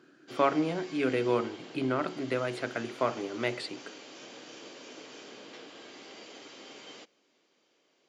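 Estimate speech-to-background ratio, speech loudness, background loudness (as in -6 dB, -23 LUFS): 15.5 dB, -31.5 LUFS, -47.0 LUFS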